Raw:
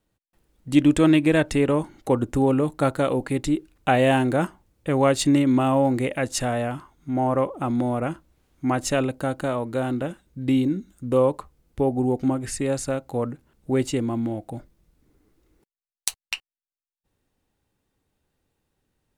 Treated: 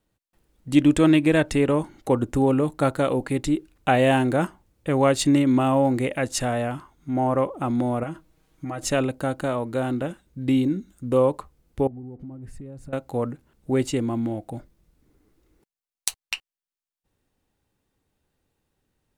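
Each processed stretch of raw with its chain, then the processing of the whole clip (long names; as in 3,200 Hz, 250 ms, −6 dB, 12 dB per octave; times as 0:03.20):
0:08.03–0:08.85: comb filter 6.3 ms, depth 67% + downward compressor 5 to 1, threshold −28 dBFS
0:11.87–0:12.93: mu-law and A-law mismatch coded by mu + drawn EQ curve 140 Hz 0 dB, 430 Hz −8 dB, 6,400 Hz −26 dB, 11,000 Hz −20 dB + downward compressor 5 to 1, threshold −36 dBFS
whole clip: no processing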